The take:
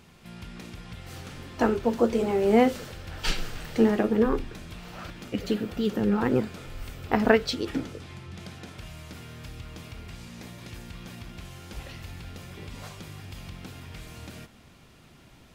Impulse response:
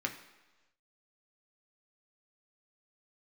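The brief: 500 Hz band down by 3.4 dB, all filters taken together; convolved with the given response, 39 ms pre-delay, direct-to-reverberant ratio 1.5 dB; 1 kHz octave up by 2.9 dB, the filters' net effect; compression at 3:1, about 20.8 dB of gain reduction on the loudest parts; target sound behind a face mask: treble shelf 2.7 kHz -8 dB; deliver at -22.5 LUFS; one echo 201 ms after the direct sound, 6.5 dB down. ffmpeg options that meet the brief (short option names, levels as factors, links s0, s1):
-filter_complex "[0:a]equalizer=f=500:t=o:g=-5.5,equalizer=f=1000:t=o:g=7.5,acompressor=threshold=0.00562:ratio=3,aecho=1:1:201:0.473,asplit=2[s0][s1];[1:a]atrim=start_sample=2205,adelay=39[s2];[s1][s2]afir=irnorm=-1:irlink=0,volume=0.531[s3];[s0][s3]amix=inputs=2:normalize=0,highshelf=f=2700:g=-8,volume=11.9"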